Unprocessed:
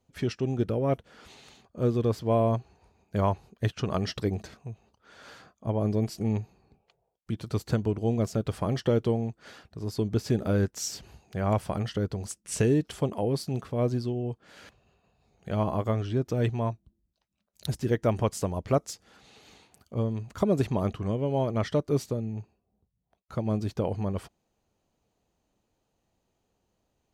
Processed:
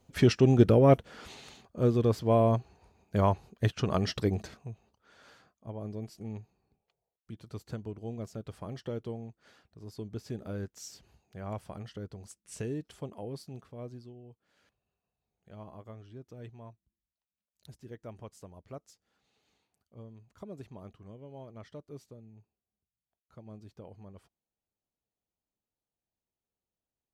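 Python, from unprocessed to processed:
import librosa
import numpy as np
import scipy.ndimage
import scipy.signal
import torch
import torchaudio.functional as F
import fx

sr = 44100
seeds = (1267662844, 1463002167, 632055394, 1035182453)

y = fx.gain(x, sr, db=fx.line((0.76, 7.0), (1.84, 0.0), (4.43, 0.0), (5.67, -12.5), (13.4, -12.5), (14.25, -20.0)))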